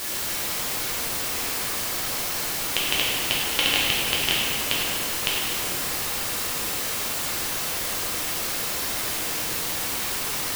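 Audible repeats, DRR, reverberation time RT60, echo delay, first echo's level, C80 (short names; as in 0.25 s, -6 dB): none, -7.0 dB, 2.8 s, none, none, -1.0 dB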